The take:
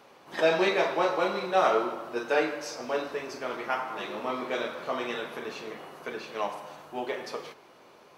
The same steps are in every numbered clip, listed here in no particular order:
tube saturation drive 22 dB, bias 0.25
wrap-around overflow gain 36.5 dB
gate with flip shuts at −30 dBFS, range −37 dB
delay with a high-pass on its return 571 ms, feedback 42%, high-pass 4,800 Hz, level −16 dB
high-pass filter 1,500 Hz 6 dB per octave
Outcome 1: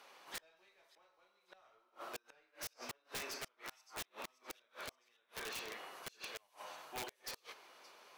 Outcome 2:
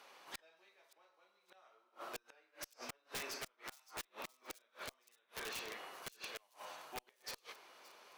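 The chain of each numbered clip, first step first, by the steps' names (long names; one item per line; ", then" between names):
high-pass filter, then tube saturation, then gate with flip, then delay with a high-pass on its return, then wrap-around overflow
high-pass filter, then gate with flip, then tube saturation, then wrap-around overflow, then delay with a high-pass on its return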